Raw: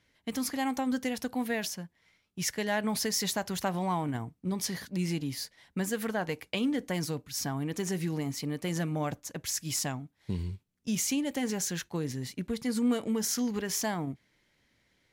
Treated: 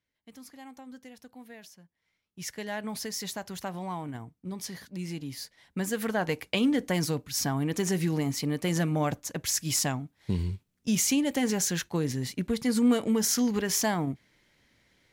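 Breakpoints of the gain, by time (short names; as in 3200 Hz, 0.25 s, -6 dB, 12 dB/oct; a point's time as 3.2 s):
1.74 s -16 dB
2.53 s -5 dB
5.07 s -5 dB
6.33 s +4.5 dB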